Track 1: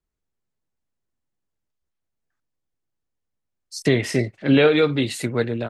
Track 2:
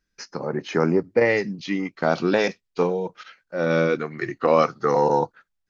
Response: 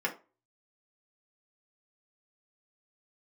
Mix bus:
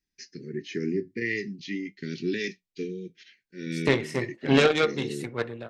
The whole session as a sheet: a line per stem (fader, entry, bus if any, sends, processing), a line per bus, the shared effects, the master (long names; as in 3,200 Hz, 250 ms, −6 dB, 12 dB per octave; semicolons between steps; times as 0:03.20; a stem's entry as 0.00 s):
−1.5 dB, 0.00 s, send −13 dB, harmonic generator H 3 −12 dB, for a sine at −6 dBFS
−1.0 dB, 0.00 s, no send, Chebyshev band-stop filter 400–1,800 Hz, order 4; flanger 0.46 Hz, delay 7.2 ms, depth 2.3 ms, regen −66%; low-shelf EQ 73 Hz −9 dB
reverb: on, RT60 0.30 s, pre-delay 3 ms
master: no processing